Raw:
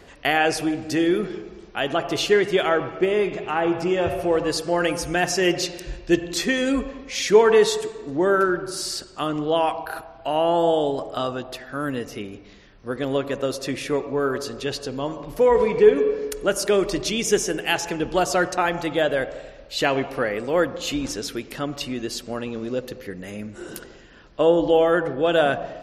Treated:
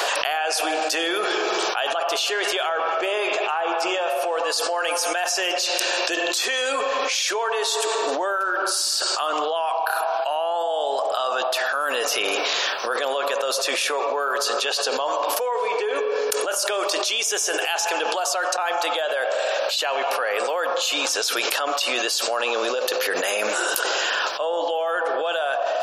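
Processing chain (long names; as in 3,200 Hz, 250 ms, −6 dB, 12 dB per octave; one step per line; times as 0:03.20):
high-pass filter 630 Hz 24 dB per octave
parametric band 2,000 Hz −11.5 dB 0.27 octaves
envelope flattener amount 100%
level −5.5 dB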